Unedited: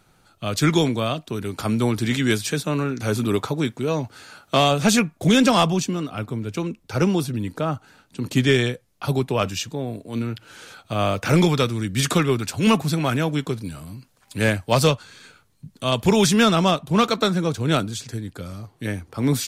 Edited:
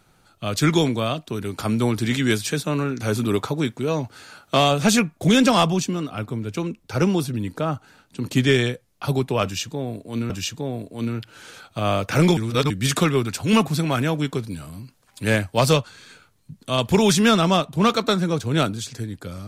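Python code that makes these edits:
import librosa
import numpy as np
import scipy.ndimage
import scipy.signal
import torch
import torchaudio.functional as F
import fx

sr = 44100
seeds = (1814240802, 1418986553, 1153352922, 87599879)

y = fx.edit(x, sr, fx.repeat(start_s=9.44, length_s=0.86, count=2),
    fx.reverse_span(start_s=11.51, length_s=0.33), tone=tone)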